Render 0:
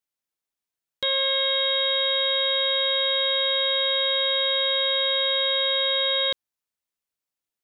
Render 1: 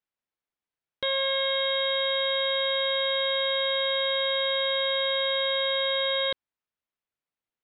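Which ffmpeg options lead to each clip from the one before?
-af "lowpass=2900"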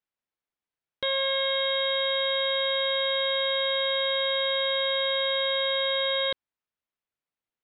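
-af anull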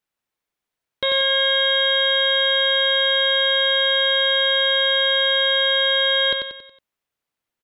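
-filter_complex "[0:a]asplit=2[s0][s1];[s1]aecho=0:1:92|184|276|368|460:0.531|0.239|0.108|0.0484|0.0218[s2];[s0][s2]amix=inputs=2:normalize=0,acontrast=73"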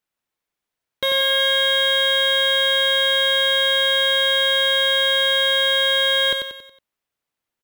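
-af "acrusher=bits=4:mode=log:mix=0:aa=0.000001"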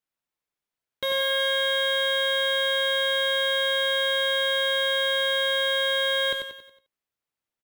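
-af "aecho=1:1:15|76:0.251|0.224,volume=0.473"

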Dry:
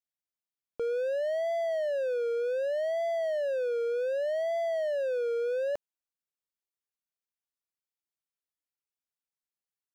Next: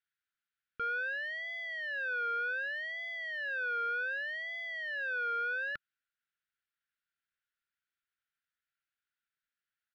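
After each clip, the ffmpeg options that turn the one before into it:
-af "firequalizer=gain_entry='entry(140,0);entry(740,-30);entry(1400,15);entry(2200,6);entry(3600,3);entry(6500,-15)':delay=0.05:min_phase=1"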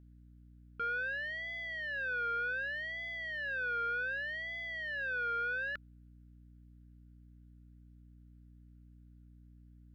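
-af "aeval=exprs='val(0)+0.00178*(sin(2*PI*60*n/s)+sin(2*PI*2*60*n/s)/2+sin(2*PI*3*60*n/s)/3+sin(2*PI*4*60*n/s)/4+sin(2*PI*5*60*n/s)/5)':c=same,volume=0.891"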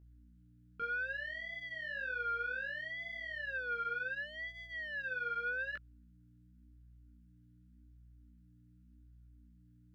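-af "flanger=delay=18.5:depth=5.1:speed=0.87"

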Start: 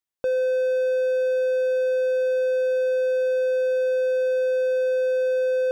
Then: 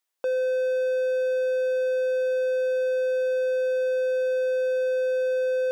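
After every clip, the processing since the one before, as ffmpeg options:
-af "highpass=420,alimiter=level_in=1.88:limit=0.0631:level=0:latency=1,volume=0.531,volume=2.37"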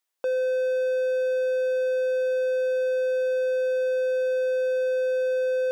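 -af anull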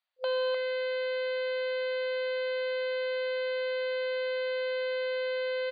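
-filter_complex "[0:a]asplit=2[s0][s1];[s1]adelay=303.2,volume=0.316,highshelf=f=4000:g=-6.82[s2];[s0][s2]amix=inputs=2:normalize=0,aeval=exprs='0.0841*(cos(1*acos(clip(val(0)/0.0841,-1,1)))-cos(1*PI/2))+0.0188*(cos(6*acos(clip(val(0)/0.0841,-1,1)))-cos(6*PI/2))':c=same,afftfilt=real='re*between(b*sr/4096,510,4800)':imag='im*between(b*sr/4096,510,4800)':win_size=4096:overlap=0.75,volume=0.891"

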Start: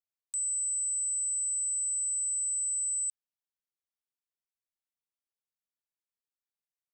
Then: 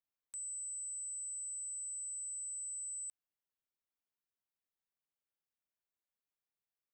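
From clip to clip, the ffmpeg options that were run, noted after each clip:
-af "acontrast=80,equalizer=f=7300:t=o:w=1.6:g=-11.5,volume=0.422"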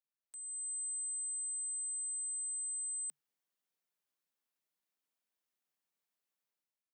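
-af "dynaudnorm=f=140:g=7:m=3.76,afreqshift=140,volume=0.398"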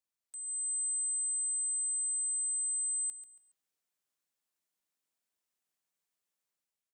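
-af "equalizer=f=7800:t=o:w=0.81:g=4.5,aecho=1:1:139|278|417:0.266|0.0745|0.0209"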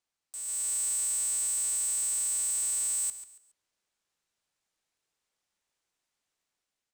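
-af "lowpass=7800,aeval=exprs='val(0)*sgn(sin(2*PI*180*n/s))':c=same,volume=2.24"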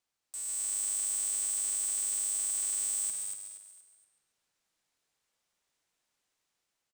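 -filter_complex "[0:a]asoftclip=type=tanh:threshold=0.0237,asplit=2[s0][s1];[s1]asplit=4[s2][s3][s4][s5];[s2]adelay=236,afreqshift=100,volume=0.596[s6];[s3]adelay=472,afreqshift=200,volume=0.209[s7];[s4]adelay=708,afreqshift=300,volume=0.0733[s8];[s5]adelay=944,afreqshift=400,volume=0.0254[s9];[s6][s7][s8][s9]amix=inputs=4:normalize=0[s10];[s0][s10]amix=inputs=2:normalize=0,volume=1.12"

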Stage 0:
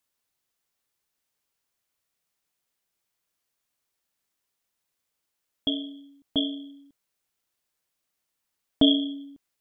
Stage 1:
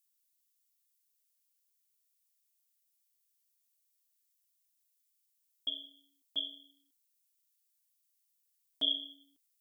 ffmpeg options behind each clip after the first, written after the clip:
-af "aderivative"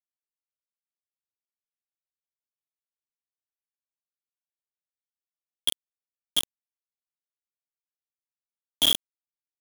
-af "acrusher=bits=4:mix=0:aa=0.000001,volume=2.82"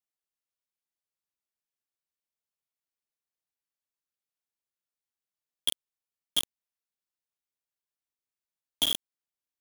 -af "alimiter=limit=0.141:level=0:latency=1:release=180"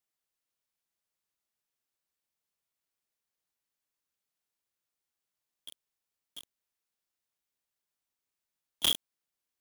-af "aeval=exprs='(mod(13.3*val(0)+1,2)-1)/13.3':c=same,volume=1.58"

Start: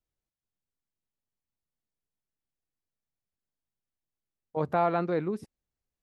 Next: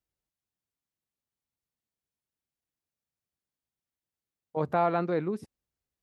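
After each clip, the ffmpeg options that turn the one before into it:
-af "highpass=44"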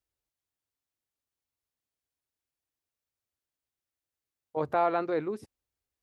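-af "equalizer=f=180:w=3.6:g=-14.5"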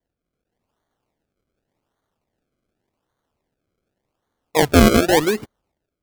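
-af "dynaudnorm=f=110:g=7:m=2.24,acrusher=samples=33:mix=1:aa=0.000001:lfo=1:lforange=33:lforate=0.87,volume=2.24"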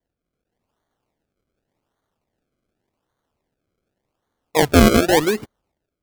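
-af anull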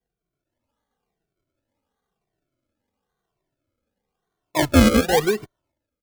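-filter_complex "[0:a]asplit=2[s0][s1];[s1]adelay=2.1,afreqshift=-0.97[s2];[s0][s2]amix=inputs=2:normalize=1"

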